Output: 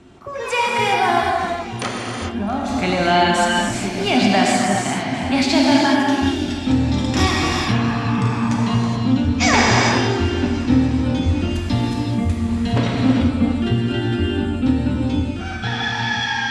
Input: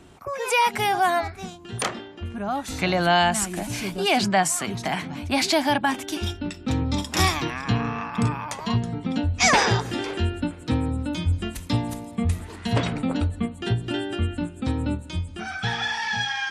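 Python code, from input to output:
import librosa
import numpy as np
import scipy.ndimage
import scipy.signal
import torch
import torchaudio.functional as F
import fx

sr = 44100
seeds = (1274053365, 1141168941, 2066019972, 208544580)

p1 = scipy.signal.sosfilt(scipy.signal.butter(2, 6700.0, 'lowpass', fs=sr, output='sos'), x)
p2 = fx.peak_eq(p1, sr, hz=250.0, db=10.5, octaves=0.33)
p3 = p2 + fx.echo_swing(p2, sr, ms=1131, ratio=1.5, feedback_pct=49, wet_db=-20.5, dry=0)
y = fx.rev_gated(p3, sr, seeds[0], gate_ms=450, shape='flat', drr_db=-3.0)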